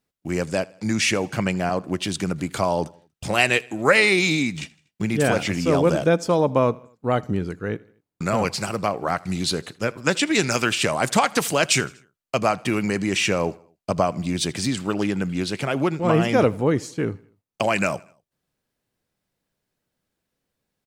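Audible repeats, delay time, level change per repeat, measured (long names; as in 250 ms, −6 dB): 2, 80 ms, −6.0 dB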